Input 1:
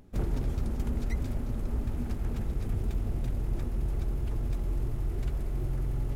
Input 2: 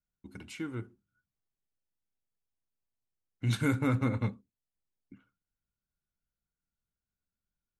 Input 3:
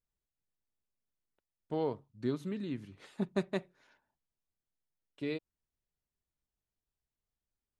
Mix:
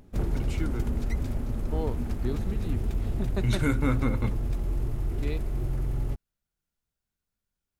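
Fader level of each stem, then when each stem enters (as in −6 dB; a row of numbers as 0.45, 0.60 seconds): +2.0, +2.0, 0.0 decibels; 0.00, 0.00, 0.00 seconds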